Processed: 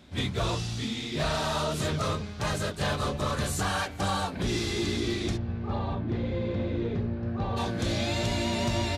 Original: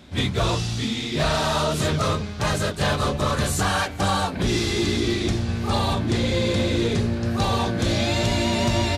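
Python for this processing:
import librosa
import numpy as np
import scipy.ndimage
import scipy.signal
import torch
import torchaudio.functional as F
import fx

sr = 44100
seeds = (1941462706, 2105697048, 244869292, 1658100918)

y = fx.spacing_loss(x, sr, db_at_10k=39, at=(5.36, 7.56), fade=0.02)
y = y * 10.0 ** (-6.5 / 20.0)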